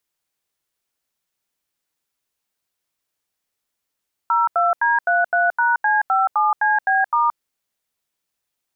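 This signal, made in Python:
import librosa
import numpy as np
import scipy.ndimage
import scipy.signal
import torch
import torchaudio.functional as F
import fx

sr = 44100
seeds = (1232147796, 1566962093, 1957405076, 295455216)

y = fx.dtmf(sr, digits='02D33#C57CB*', tone_ms=174, gap_ms=83, level_db=-17.0)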